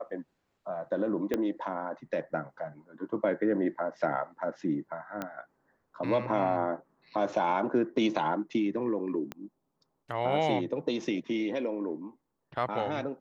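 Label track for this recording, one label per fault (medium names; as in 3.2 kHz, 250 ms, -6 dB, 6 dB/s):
1.340000	1.340000	pop -16 dBFS
5.220000	5.220000	pop -20 dBFS
9.320000	9.320000	pop -22 dBFS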